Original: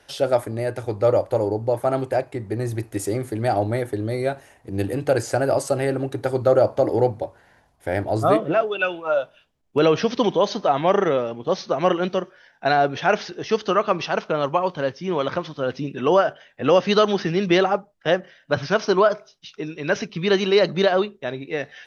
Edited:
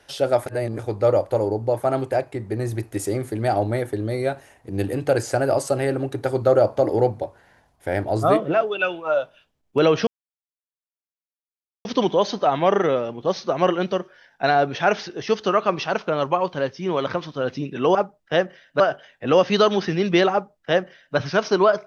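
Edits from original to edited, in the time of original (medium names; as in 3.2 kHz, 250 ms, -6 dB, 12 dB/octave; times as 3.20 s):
0.46–0.79 s: reverse
10.07 s: insert silence 1.78 s
17.69–18.54 s: copy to 16.17 s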